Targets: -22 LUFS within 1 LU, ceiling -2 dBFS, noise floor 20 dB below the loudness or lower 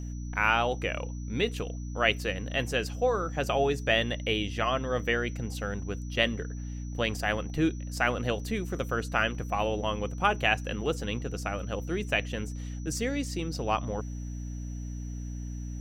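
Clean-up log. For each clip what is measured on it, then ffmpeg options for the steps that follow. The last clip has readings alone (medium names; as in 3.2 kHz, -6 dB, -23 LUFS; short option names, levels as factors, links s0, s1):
hum 60 Hz; highest harmonic 300 Hz; hum level -34 dBFS; steady tone 5.9 kHz; tone level -53 dBFS; loudness -30.0 LUFS; peak level -8.5 dBFS; loudness target -22.0 LUFS
-> -af "bandreject=f=60:t=h:w=4,bandreject=f=120:t=h:w=4,bandreject=f=180:t=h:w=4,bandreject=f=240:t=h:w=4,bandreject=f=300:t=h:w=4"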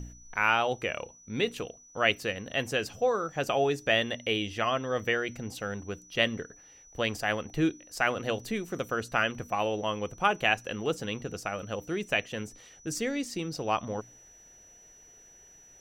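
hum not found; steady tone 5.9 kHz; tone level -53 dBFS
-> -af "bandreject=f=5900:w=30"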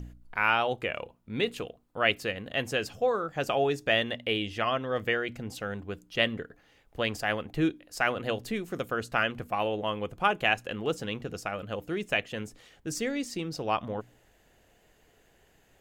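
steady tone not found; loudness -30.5 LUFS; peak level -8.5 dBFS; loudness target -22.0 LUFS
-> -af "volume=2.66,alimiter=limit=0.794:level=0:latency=1"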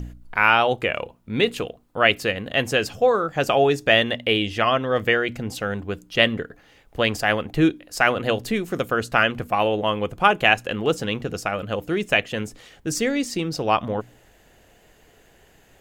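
loudness -22.0 LUFS; peak level -2.0 dBFS; noise floor -56 dBFS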